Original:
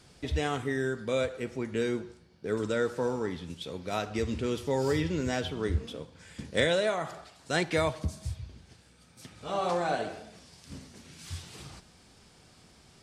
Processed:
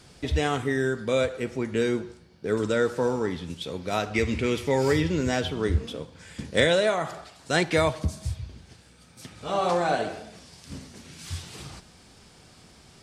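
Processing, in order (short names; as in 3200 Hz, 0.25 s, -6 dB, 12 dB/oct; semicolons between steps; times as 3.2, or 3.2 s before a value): 4.14–4.94 bell 2200 Hz +12 dB 0.4 oct; gain +5 dB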